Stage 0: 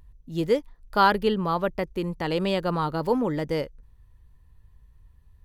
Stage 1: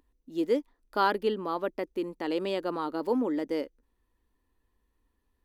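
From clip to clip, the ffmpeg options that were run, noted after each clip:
-af "lowshelf=f=190:t=q:w=3:g=-13.5,volume=-7dB"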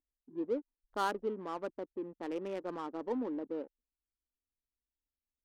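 -af "afwtdn=0.01,adynamicsmooth=sensitivity=7:basefreq=680,volume=-8dB"

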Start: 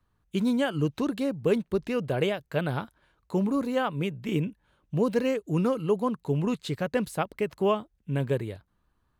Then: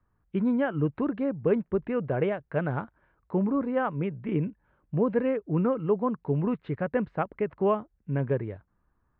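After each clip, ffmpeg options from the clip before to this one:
-af "lowpass=f=2k:w=0.5412,lowpass=f=2k:w=1.3066"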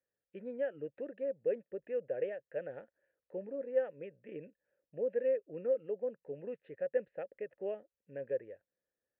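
-filter_complex "[0:a]asplit=3[a][b][c];[a]bandpass=f=530:t=q:w=8,volume=0dB[d];[b]bandpass=f=1.84k:t=q:w=8,volume=-6dB[e];[c]bandpass=f=2.48k:t=q:w=8,volume=-9dB[f];[d][e][f]amix=inputs=3:normalize=0,volume=-1.5dB"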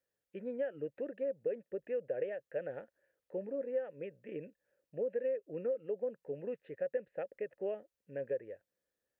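-af "acompressor=threshold=-34dB:ratio=6,volume=2.5dB"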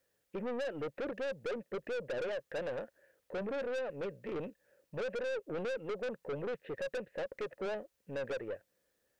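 -af "aeval=exprs='(tanh(178*val(0)+0.2)-tanh(0.2))/178':c=same,volume=10.5dB"

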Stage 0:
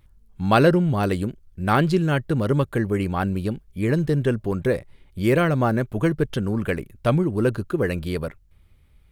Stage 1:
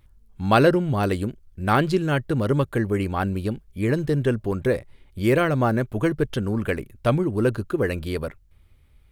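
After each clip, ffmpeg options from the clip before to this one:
-af "equalizer=f=170:w=6.4:g=-7"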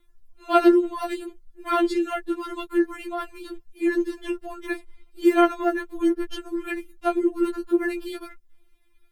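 -af "afftfilt=real='re*4*eq(mod(b,16),0)':imag='im*4*eq(mod(b,16),0)':win_size=2048:overlap=0.75"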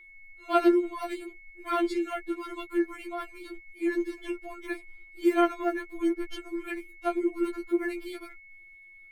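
-af "aeval=exprs='val(0)+0.00631*sin(2*PI*2200*n/s)':c=same,volume=-5.5dB"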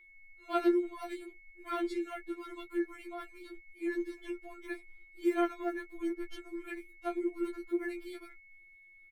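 -filter_complex "[0:a]asplit=2[a][b];[b]adelay=14,volume=-10dB[c];[a][c]amix=inputs=2:normalize=0,volume=-7.5dB"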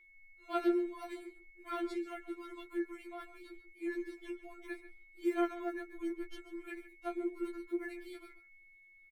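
-filter_complex "[0:a]asplit=2[a][b];[b]adelay=139.9,volume=-14dB,highshelf=f=4k:g=-3.15[c];[a][c]amix=inputs=2:normalize=0,volume=-3.5dB"

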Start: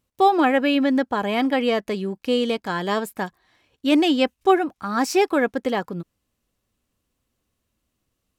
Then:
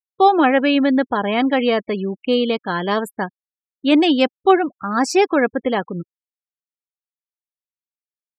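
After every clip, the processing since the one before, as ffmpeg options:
-af "afftfilt=real='re*gte(hypot(re,im),0.0224)':imag='im*gte(hypot(re,im),0.0224)':win_size=1024:overlap=0.75,volume=3.5dB"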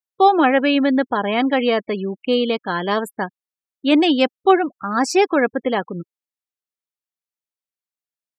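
-af "lowshelf=f=84:g=-11"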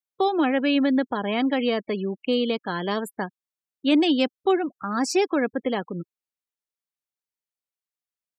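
-filter_complex "[0:a]acrossover=split=390|3000[a][b][c];[b]acompressor=threshold=-25dB:ratio=2.5[d];[a][d][c]amix=inputs=3:normalize=0,volume=-3dB"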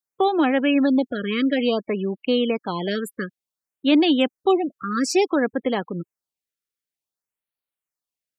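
-af "afftfilt=real='re*(1-between(b*sr/1024,760*pow(6900/760,0.5+0.5*sin(2*PI*0.56*pts/sr))/1.41,760*pow(6900/760,0.5+0.5*sin(2*PI*0.56*pts/sr))*1.41))':imag='im*(1-between(b*sr/1024,760*pow(6900/760,0.5+0.5*sin(2*PI*0.56*pts/sr))/1.41,760*pow(6900/760,0.5+0.5*sin(2*PI*0.56*pts/sr))*1.41))':win_size=1024:overlap=0.75,volume=2.5dB"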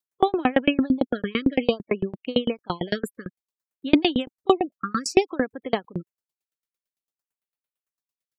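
-af "aeval=exprs='val(0)*pow(10,-33*if(lt(mod(8.9*n/s,1),2*abs(8.9)/1000),1-mod(8.9*n/s,1)/(2*abs(8.9)/1000),(mod(8.9*n/s,1)-2*abs(8.9)/1000)/(1-2*abs(8.9)/1000))/20)':c=same,volume=6dB"

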